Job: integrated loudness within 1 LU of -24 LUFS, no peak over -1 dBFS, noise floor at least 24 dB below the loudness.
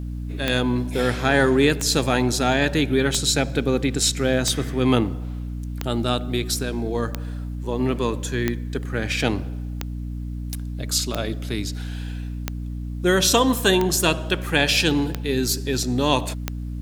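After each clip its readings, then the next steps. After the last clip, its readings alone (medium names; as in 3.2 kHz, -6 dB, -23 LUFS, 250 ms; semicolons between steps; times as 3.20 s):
clicks found 13; hum 60 Hz; highest harmonic 300 Hz; hum level -27 dBFS; loudness -22.5 LUFS; peak level -3.0 dBFS; loudness target -24.0 LUFS
-> de-click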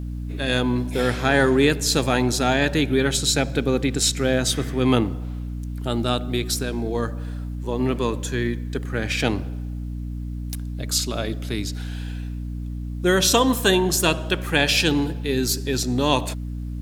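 clicks found 0; hum 60 Hz; highest harmonic 300 Hz; hum level -27 dBFS
-> hum notches 60/120/180/240/300 Hz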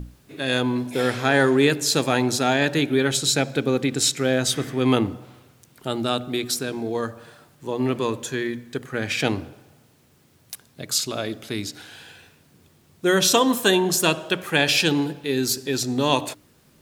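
hum not found; loudness -22.0 LUFS; peak level -3.5 dBFS; loudness target -24.0 LUFS
-> trim -2 dB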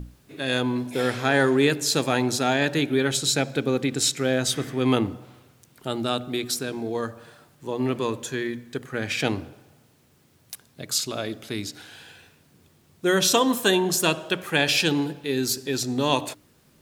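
loudness -24.0 LUFS; peak level -5.5 dBFS; noise floor -60 dBFS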